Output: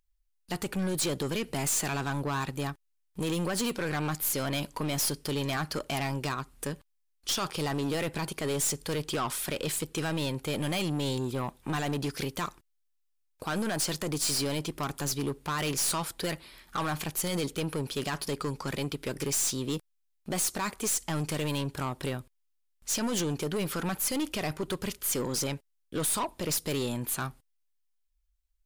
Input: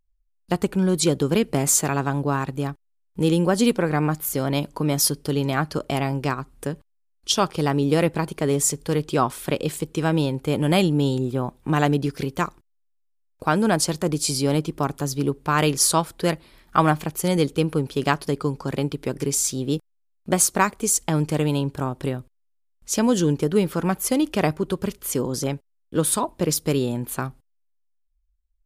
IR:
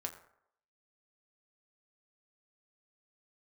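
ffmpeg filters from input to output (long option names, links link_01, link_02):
-af "alimiter=limit=-14dB:level=0:latency=1:release=25,tiltshelf=frequency=970:gain=-5,aeval=exprs='(tanh(20*val(0)+0.2)-tanh(0.2))/20':channel_layout=same"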